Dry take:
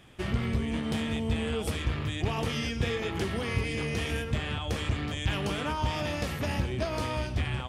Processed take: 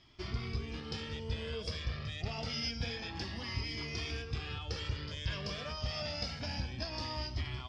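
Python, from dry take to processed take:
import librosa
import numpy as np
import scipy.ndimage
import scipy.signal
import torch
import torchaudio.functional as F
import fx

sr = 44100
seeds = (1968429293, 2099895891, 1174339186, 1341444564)

y = fx.ladder_lowpass(x, sr, hz=5300.0, resonance_pct=80)
y = fx.comb_cascade(y, sr, direction='rising', hz=0.27)
y = F.gain(torch.from_numpy(y), 7.0).numpy()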